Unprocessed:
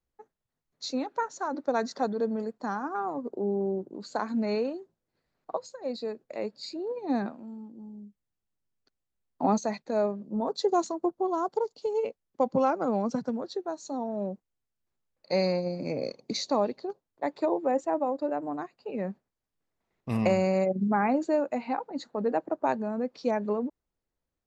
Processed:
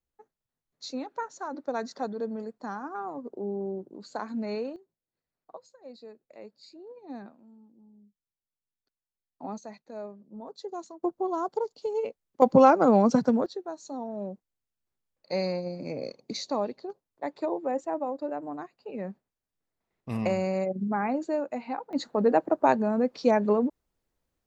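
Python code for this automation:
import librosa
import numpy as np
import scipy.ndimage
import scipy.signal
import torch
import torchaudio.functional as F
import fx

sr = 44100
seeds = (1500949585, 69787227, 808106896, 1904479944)

y = fx.gain(x, sr, db=fx.steps((0.0, -4.0), (4.76, -12.5), (11.03, -1.0), (12.42, 8.0), (13.46, -3.0), (21.93, 5.5)))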